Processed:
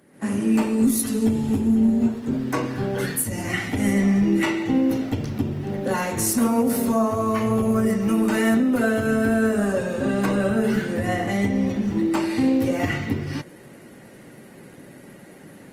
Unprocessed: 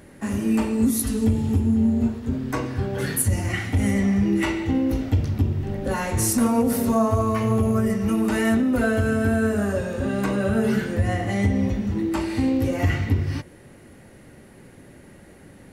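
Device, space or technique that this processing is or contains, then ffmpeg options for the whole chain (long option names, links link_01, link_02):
video call: -af "highpass=frequency=130:width=0.5412,highpass=frequency=130:width=1.3066,dynaudnorm=framelen=120:gausssize=3:maxgain=11.5dB,volume=-8dB" -ar 48000 -c:a libopus -b:a 24k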